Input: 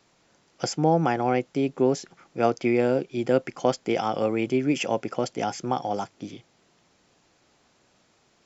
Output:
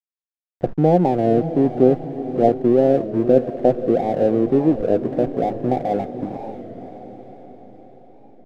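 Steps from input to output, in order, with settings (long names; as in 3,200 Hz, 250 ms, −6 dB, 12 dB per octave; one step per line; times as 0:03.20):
stylus tracing distortion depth 0.1 ms
Butterworth low-pass 760 Hz 72 dB per octave
hum removal 106.3 Hz, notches 3
in parallel at −2 dB: downward compressor, threshold −33 dBFS, peak gain reduction 16.5 dB
on the sum: slack as between gear wheels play −34.5 dBFS
on a send: feedback delay with all-pass diffusion 551 ms, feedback 53%, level −11 dB
on the sum: wow of a warped record 33 1/3 rpm, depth 160 cents
level +6 dB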